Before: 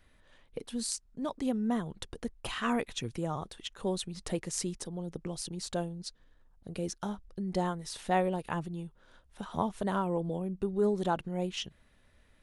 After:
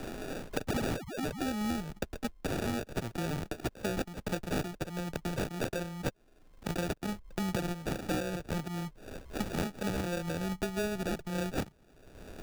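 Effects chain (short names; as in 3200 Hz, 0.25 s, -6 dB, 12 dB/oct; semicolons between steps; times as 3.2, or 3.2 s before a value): modulation noise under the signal 33 dB; painted sound fall, 0.69–1.5, 550–6300 Hz -41 dBFS; in parallel at -9.5 dB: Schmitt trigger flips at -34.5 dBFS; on the sum: elliptic low-pass 9700 Hz; bell 5100 Hz +11.5 dB 1.9 oct; sample-and-hold 42×; three-band squash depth 100%; gain -3.5 dB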